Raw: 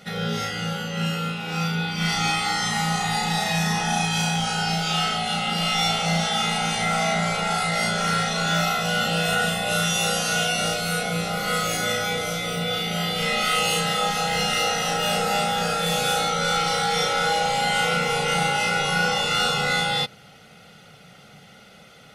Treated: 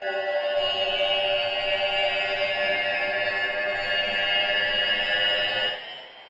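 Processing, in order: Chebyshev low-pass 980 Hz, order 4; wide varispeed 3.52×; frequency-shifting echo 308 ms, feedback 31%, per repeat +130 Hz, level -13.5 dB; Schroeder reverb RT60 0.39 s, combs from 32 ms, DRR 1.5 dB

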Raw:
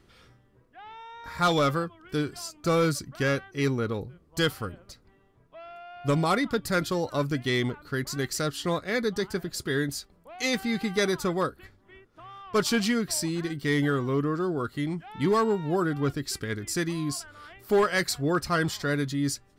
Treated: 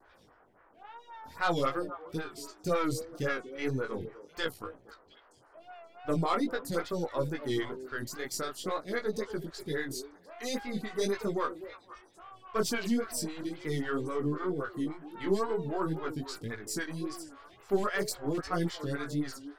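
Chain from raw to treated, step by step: partial rectifier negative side -3 dB; 4.43–5.61 s: AM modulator 63 Hz, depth 45%; repeats whose band climbs or falls 236 ms, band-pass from 400 Hz, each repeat 1.4 oct, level -10 dB; band noise 300–1600 Hz -60 dBFS; chorus 0.43 Hz, delay 18.5 ms, depth 6.4 ms; 17.95–18.41 s: hard clipper -25 dBFS, distortion -26 dB; wow and flutter 88 cents; lamp-driven phase shifter 3.7 Hz; trim +1 dB

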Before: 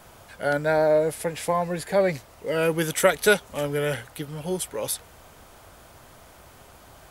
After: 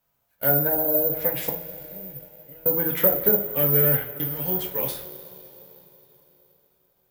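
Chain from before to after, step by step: gate -36 dBFS, range -29 dB; low-pass that closes with the level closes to 490 Hz, closed at -17.5 dBFS; 1.49–2.66 s: amplifier tone stack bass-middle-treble 10-0-1; two-slope reverb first 0.3 s, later 3.8 s, from -20 dB, DRR -0.5 dB; careless resampling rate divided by 3×, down none, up zero stuff; trim -2.5 dB

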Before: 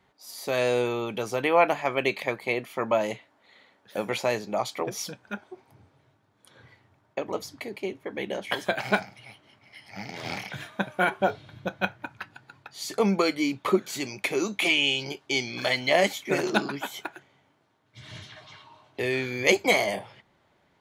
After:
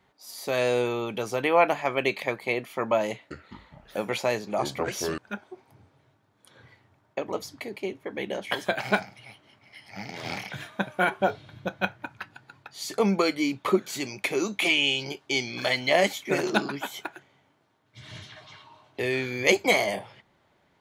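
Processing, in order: 3.10–5.18 s: ever faster or slower copies 205 ms, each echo -7 st, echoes 3, each echo -6 dB

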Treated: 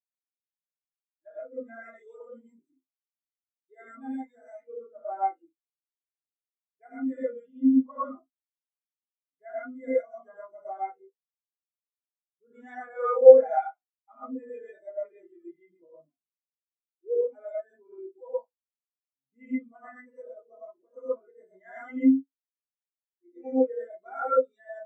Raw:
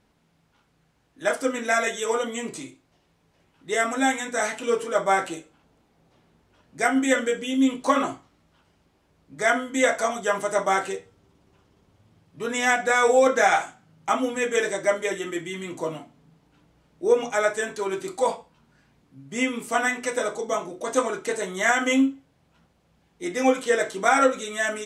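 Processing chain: high-pass 140 Hz 12 dB/octave; gated-style reverb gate 150 ms rising, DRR -5 dB; spectral contrast expander 2.5:1; trim -2 dB

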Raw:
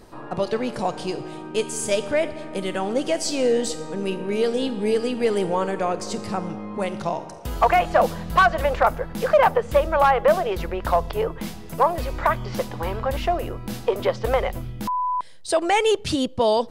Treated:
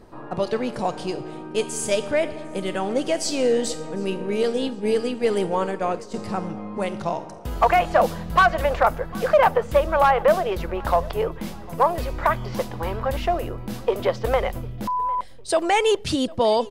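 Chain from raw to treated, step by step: 4.43–6.14 s: expander -22 dBFS; feedback delay 752 ms, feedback 40%, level -22.5 dB; tape noise reduction on one side only decoder only

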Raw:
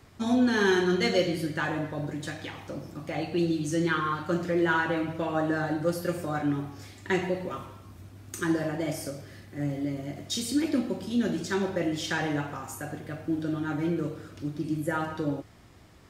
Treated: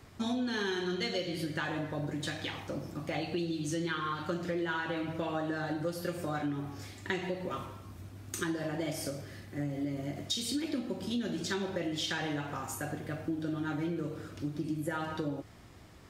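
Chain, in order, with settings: dynamic bell 3.6 kHz, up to +7 dB, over -50 dBFS, Q 1.5; compression, threshold -31 dBFS, peak gain reduction 12 dB

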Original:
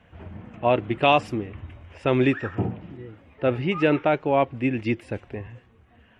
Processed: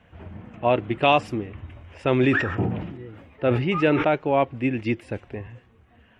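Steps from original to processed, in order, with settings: 1.69–4.08 s: decay stretcher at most 50 dB/s

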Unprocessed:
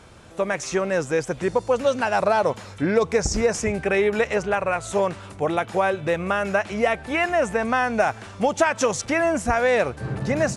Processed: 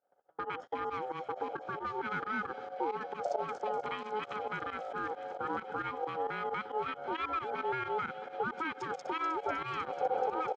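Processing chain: local Wiener filter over 25 samples; compression 2.5:1, threshold -25 dBFS, peak gain reduction 8 dB; peak limiter -23.5 dBFS, peak gain reduction 10.5 dB; treble shelf 3.2 kHz -9 dB; comb 1.2 ms, depth 80%; ring modulator 640 Hz; band-pass 230–4700 Hz; on a send: feedback echo behind a high-pass 248 ms, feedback 85%, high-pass 3.7 kHz, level -8.5 dB; on the sum: volume shaper 134 bpm, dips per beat 2, -15 dB, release 63 ms; gate -44 dBFS, range -30 dB

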